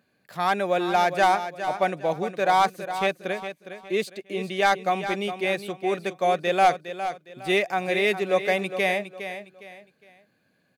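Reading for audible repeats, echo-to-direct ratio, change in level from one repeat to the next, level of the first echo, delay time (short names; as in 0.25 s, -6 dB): 3, -10.0 dB, -10.0 dB, -10.5 dB, 0.41 s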